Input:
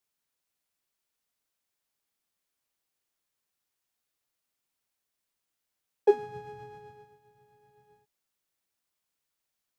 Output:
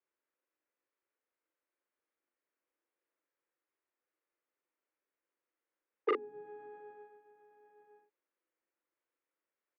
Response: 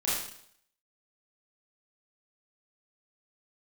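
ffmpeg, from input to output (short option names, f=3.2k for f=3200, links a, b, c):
-filter_complex "[0:a]acrossover=split=370[a][b];[a]aeval=exprs='(mod(12.6*val(0)+1,2)-1)/12.6':c=same[c];[b]acompressor=threshold=-51dB:ratio=6[d];[c][d]amix=inputs=2:normalize=0,highpass=f=280:w=0.5412,highpass=f=280:w=1.3066,equalizer=f=330:t=q:w=4:g=7,equalizer=f=510:t=q:w=4:g=6,equalizer=f=750:t=q:w=4:g=-5,lowpass=f=2.2k:w=0.5412,lowpass=f=2.2k:w=1.3066,asplit=2[e][f];[f]adelay=41,volume=-3dB[g];[e][g]amix=inputs=2:normalize=0,volume=-3dB"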